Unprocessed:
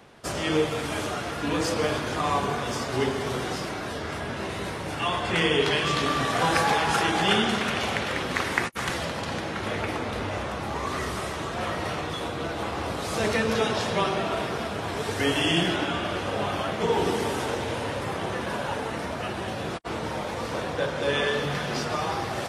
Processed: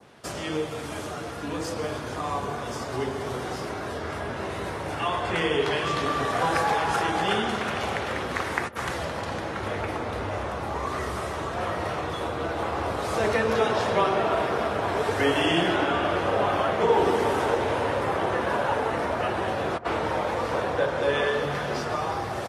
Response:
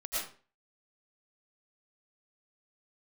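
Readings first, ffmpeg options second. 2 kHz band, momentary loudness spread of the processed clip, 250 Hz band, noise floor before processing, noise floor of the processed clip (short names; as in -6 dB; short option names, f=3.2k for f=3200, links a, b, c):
-1.0 dB, 9 LU, -1.5 dB, -33 dBFS, -34 dBFS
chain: -filter_complex "[0:a]asplit=2[a][b];[b]adelay=626,lowpass=f=1.1k:p=1,volume=-14dB,asplit=2[c][d];[d]adelay=626,lowpass=f=1.1k:p=1,volume=0.28,asplit=2[e][f];[f]adelay=626,lowpass=f=1.1k:p=1,volume=0.28[g];[a][c][e][g]amix=inputs=4:normalize=0,adynamicequalizer=threshold=0.00794:dfrequency=2700:dqfactor=0.79:tfrequency=2700:tqfactor=0.79:attack=5:release=100:ratio=0.375:range=2.5:mode=cutabove:tftype=bell,asplit=2[h][i];[i]acompressor=threshold=-35dB:ratio=6,volume=0.5dB[j];[h][j]amix=inputs=2:normalize=0,asubboost=boost=3:cutoff=100,highpass=68,acrossover=split=270|3200[k][l][m];[l]dynaudnorm=f=710:g=11:m=11.5dB[n];[k][n][m]amix=inputs=3:normalize=0,volume=-6.5dB"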